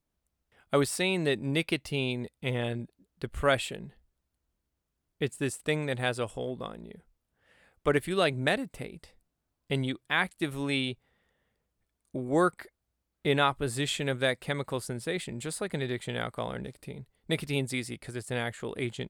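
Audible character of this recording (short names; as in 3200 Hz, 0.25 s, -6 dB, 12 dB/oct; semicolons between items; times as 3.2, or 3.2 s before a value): noise floor -83 dBFS; spectral tilt -4.5 dB/oct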